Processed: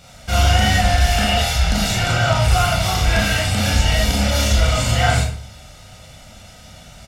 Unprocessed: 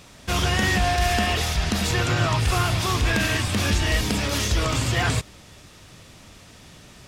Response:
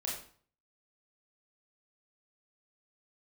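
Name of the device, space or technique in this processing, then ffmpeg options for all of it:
microphone above a desk: -filter_complex "[0:a]aecho=1:1:1.4:0.65[s0];[1:a]atrim=start_sample=2205[s1];[s0][s1]afir=irnorm=-1:irlink=0,volume=1.19"

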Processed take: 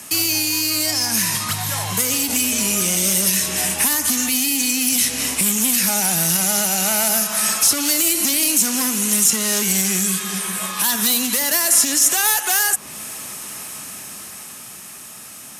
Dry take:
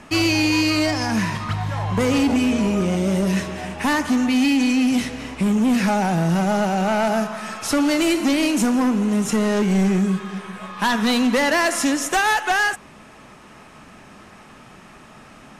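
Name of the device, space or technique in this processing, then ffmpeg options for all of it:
FM broadcast chain: -filter_complex "[0:a]highpass=f=65:w=0.5412,highpass=f=65:w=1.3066,dynaudnorm=f=110:g=31:m=2.24,acrossover=split=96|1400|6300[s0][s1][s2][s3];[s0]acompressor=threshold=0.00708:ratio=4[s4];[s1]acompressor=threshold=0.0708:ratio=4[s5];[s2]acompressor=threshold=0.0355:ratio=4[s6];[s3]acompressor=threshold=0.00708:ratio=4[s7];[s4][s5][s6][s7]amix=inputs=4:normalize=0,aemphasis=mode=production:type=75fm,alimiter=limit=0.237:level=0:latency=1:release=68,asoftclip=type=hard:threshold=0.168,lowpass=f=15000:w=0.5412,lowpass=f=15000:w=1.3066,aemphasis=mode=production:type=75fm,volume=0.841"

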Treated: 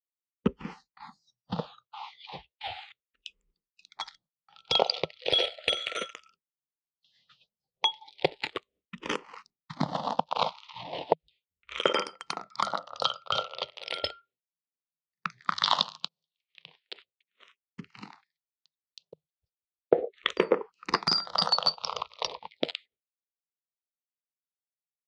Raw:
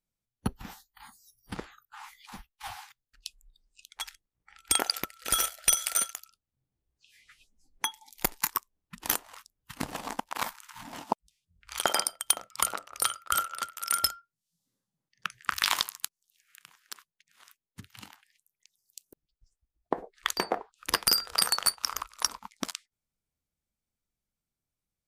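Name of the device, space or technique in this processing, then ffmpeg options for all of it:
barber-pole phaser into a guitar amplifier: -filter_complex "[0:a]equalizer=f=500:t=o:w=1:g=11,equalizer=f=4000:t=o:w=1:g=6,equalizer=f=8000:t=o:w=1:g=3,agate=range=0.0224:threshold=0.00282:ratio=3:detection=peak,asplit=2[s0][s1];[s1]afreqshift=-0.35[s2];[s0][s2]amix=inputs=2:normalize=1,asoftclip=type=tanh:threshold=0.335,highpass=100,equalizer=f=160:t=q:w=4:g=8,equalizer=f=290:t=q:w=4:g=-3,equalizer=f=1600:t=q:w=4:g=-9,lowpass=f=3900:w=0.5412,lowpass=f=3900:w=1.3066,asettb=1/sr,asplit=3[s3][s4][s5];[s3]atrim=end=15.794[s6];[s4]atrim=start=15.79:end=16.78,asetpts=PTS-STARTPTS,afade=t=in:d=0.004:c=qsin,afade=t=out:st=0.986:d=0.004:c=qsin,equalizer=f=230:t=o:w=0.94:g=8[s7];[s5]atrim=start=16.776[s8];[s6][s7]acrossfade=d=0.004:c1=hsin:c2=qsin[s9];[s9][s8]acrossfade=d=0.004:c1=qsin:c2=hsin,volume=1.78"

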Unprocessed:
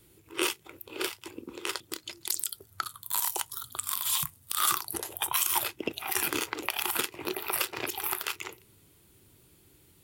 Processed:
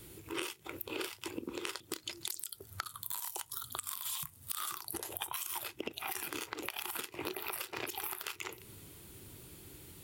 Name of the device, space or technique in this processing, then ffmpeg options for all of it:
serial compression, leveller first: -af "acompressor=threshold=0.0251:ratio=2.5,acompressor=threshold=0.00631:ratio=6,volume=2.37"

